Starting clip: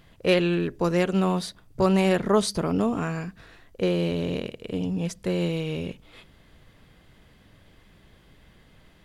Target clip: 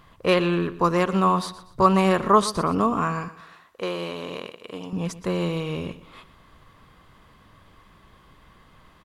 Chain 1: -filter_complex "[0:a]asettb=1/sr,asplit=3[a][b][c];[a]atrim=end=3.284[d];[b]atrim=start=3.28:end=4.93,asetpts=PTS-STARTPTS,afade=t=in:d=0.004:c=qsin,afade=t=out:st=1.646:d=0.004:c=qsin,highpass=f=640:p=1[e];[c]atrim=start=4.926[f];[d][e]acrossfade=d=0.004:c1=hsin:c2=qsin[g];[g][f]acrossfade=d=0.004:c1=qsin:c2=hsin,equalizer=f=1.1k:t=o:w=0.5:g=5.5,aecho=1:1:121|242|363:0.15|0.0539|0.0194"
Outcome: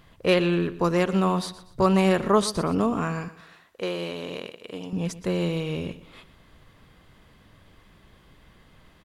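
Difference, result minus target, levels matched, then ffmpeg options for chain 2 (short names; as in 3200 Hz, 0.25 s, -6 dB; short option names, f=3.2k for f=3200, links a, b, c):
1000 Hz band -4.5 dB
-filter_complex "[0:a]asettb=1/sr,asplit=3[a][b][c];[a]atrim=end=3.284[d];[b]atrim=start=3.28:end=4.93,asetpts=PTS-STARTPTS,afade=t=in:d=0.004:c=qsin,afade=t=out:st=1.646:d=0.004:c=qsin,highpass=f=640:p=1[e];[c]atrim=start=4.926[f];[d][e]acrossfade=d=0.004:c1=hsin:c2=qsin[g];[g][f]acrossfade=d=0.004:c1=qsin:c2=hsin,equalizer=f=1.1k:t=o:w=0.5:g=14.5,aecho=1:1:121|242|363:0.15|0.0539|0.0194"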